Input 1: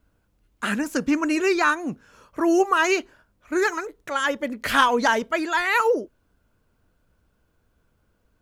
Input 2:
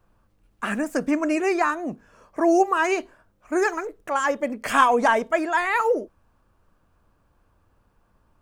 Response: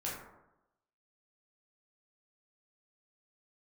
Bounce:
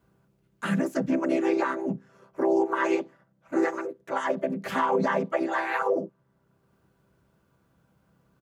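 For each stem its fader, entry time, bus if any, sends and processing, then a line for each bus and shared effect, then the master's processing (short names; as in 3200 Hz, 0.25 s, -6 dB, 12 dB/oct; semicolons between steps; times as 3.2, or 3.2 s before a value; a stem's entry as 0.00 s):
-1.0 dB, 0.00 s, no send, compressor, threshold -22 dBFS, peak gain reduction 9.5 dB; auto duck -12 dB, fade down 1.35 s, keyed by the second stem
-1.5 dB, 1.3 ms, no send, chord vocoder major triad, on C3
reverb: off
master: HPF 77 Hz; limiter -15 dBFS, peak gain reduction 8 dB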